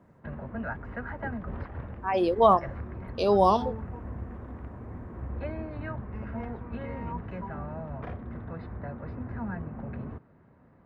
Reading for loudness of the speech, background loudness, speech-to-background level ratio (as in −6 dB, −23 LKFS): −24.0 LKFS, −38.5 LKFS, 14.5 dB